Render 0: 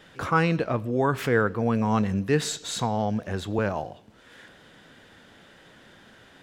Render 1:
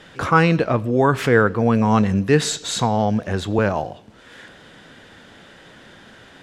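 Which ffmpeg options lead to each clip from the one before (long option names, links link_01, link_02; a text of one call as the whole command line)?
ffmpeg -i in.wav -af "lowpass=11000,volume=7dB" out.wav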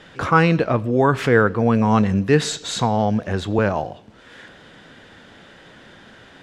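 ffmpeg -i in.wav -af "highshelf=frequency=9900:gain=-10" out.wav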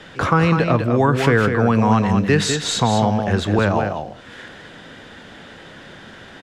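ffmpeg -i in.wav -filter_complex "[0:a]acrossover=split=290|690[link_01][link_02][link_03];[link_01]acompressor=threshold=-21dB:ratio=4[link_04];[link_02]acompressor=threshold=-28dB:ratio=4[link_05];[link_03]acompressor=threshold=-23dB:ratio=4[link_06];[link_04][link_05][link_06]amix=inputs=3:normalize=0,asplit=2[link_07][link_08];[link_08]aecho=0:1:201:0.473[link_09];[link_07][link_09]amix=inputs=2:normalize=0,volume=4.5dB" out.wav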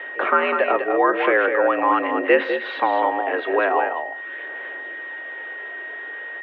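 ffmpeg -i in.wav -af "aphaser=in_gain=1:out_gain=1:delay=3.3:decay=0.3:speed=0.43:type=sinusoidal,aeval=exprs='val(0)+0.0282*sin(2*PI*1800*n/s)':channel_layout=same,highpass=frequency=290:width_type=q:width=0.5412,highpass=frequency=290:width_type=q:width=1.307,lowpass=frequency=2800:width_type=q:width=0.5176,lowpass=frequency=2800:width_type=q:width=0.7071,lowpass=frequency=2800:width_type=q:width=1.932,afreqshift=75" out.wav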